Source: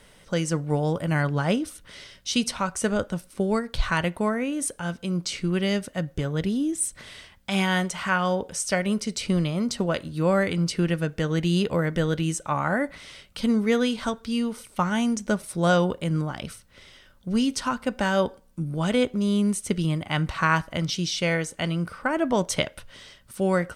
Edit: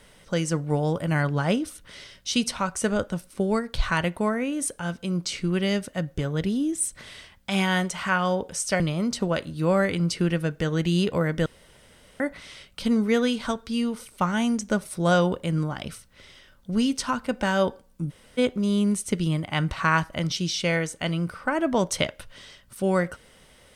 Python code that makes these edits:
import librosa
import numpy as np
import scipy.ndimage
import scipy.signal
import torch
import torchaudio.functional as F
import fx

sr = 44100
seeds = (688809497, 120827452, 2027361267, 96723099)

y = fx.edit(x, sr, fx.cut(start_s=8.8, length_s=0.58),
    fx.room_tone_fill(start_s=12.04, length_s=0.74),
    fx.room_tone_fill(start_s=18.68, length_s=0.28, crossfade_s=0.02), tone=tone)